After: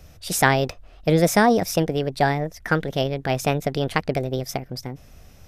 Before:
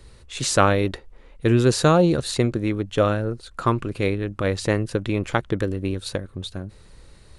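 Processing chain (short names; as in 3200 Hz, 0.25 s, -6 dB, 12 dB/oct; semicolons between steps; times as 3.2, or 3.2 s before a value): speed mistake 33 rpm record played at 45 rpm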